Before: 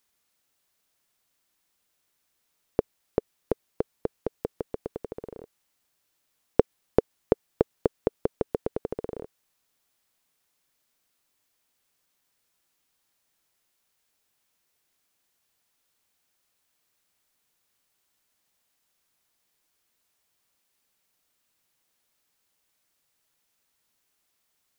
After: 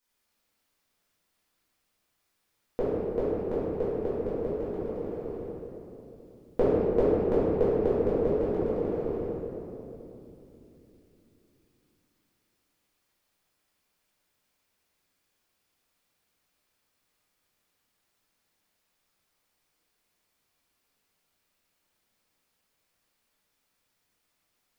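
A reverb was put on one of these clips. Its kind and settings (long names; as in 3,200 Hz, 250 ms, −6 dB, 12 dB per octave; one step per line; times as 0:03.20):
rectangular room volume 150 cubic metres, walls hard, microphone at 1.9 metres
level −11.5 dB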